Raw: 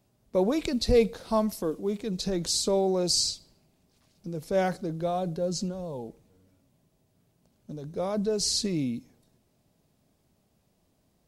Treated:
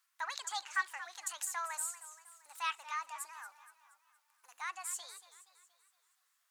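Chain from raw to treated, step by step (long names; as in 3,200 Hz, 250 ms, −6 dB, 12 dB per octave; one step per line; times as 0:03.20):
treble cut that deepens with the level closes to 2,700 Hz, closed at −25 dBFS
high-pass filter 840 Hz 24 dB per octave
wrong playback speed 45 rpm record played at 78 rpm
feedback echo with a swinging delay time 235 ms, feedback 50%, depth 152 cents, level −14 dB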